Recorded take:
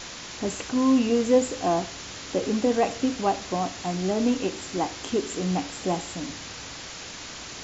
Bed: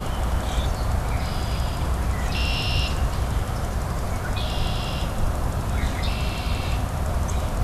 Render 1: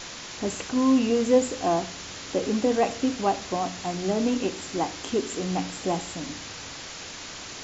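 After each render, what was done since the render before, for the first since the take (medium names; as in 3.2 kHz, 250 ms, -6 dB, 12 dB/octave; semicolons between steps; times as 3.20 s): de-hum 60 Hz, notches 5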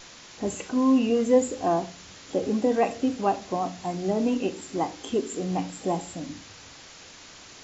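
noise print and reduce 8 dB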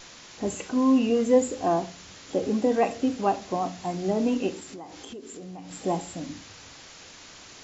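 4.59–5.71 s: compression, threshold -38 dBFS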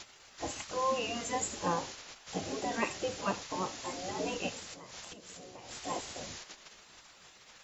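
treble shelf 5.5 kHz +5 dB; spectral gate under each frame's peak -10 dB weak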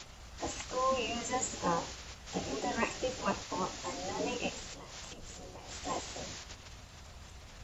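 add bed -28 dB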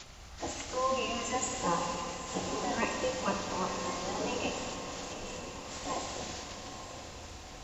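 echo that smears into a reverb 929 ms, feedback 57%, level -10 dB; Schroeder reverb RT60 2.9 s, combs from 29 ms, DRR 3.5 dB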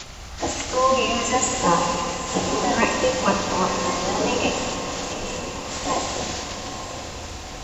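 trim +12 dB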